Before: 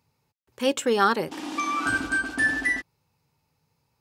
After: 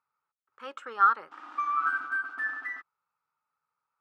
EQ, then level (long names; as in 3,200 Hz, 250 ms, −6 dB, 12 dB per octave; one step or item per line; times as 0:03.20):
resonant band-pass 1,300 Hz, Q 9.8
+6.5 dB